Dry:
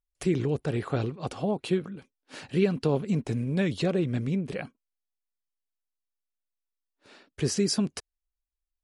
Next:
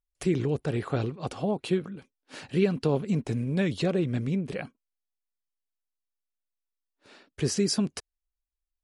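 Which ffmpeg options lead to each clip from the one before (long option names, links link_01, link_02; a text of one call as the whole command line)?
ffmpeg -i in.wav -af anull out.wav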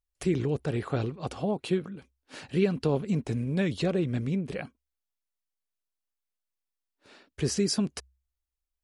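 ffmpeg -i in.wav -af "equalizer=frequency=65:width=7.1:gain=13,volume=-1dB" out.wav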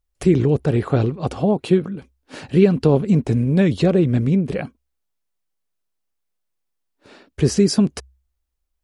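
ffmpeg -i in.wav -af "tiltshelf=frequency=970:gain=3.5,volume=8.5dB" out.wav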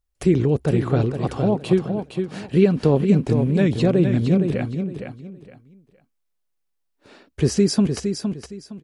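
ffmpeg -i in.wav -af "aecho=1:1:463|926|1389:0.447|0.112|0.0279,volume=-2dB" out.wav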